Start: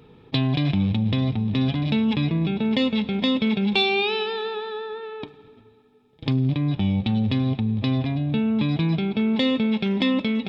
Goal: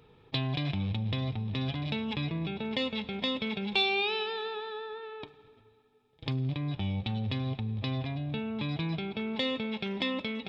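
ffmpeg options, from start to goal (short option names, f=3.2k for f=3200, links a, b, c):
-af "equalizer=f=230:t=o:w=1.3:g=-8.5,volume=-5.5dB"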